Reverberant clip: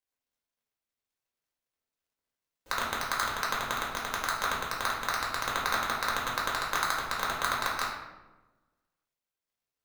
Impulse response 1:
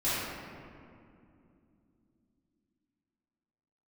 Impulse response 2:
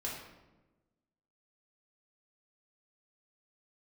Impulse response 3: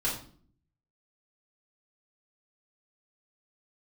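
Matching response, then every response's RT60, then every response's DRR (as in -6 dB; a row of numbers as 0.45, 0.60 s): 2; 2.6, 1.1, 0.50 s; -13.5, -5.0, -6.5 dB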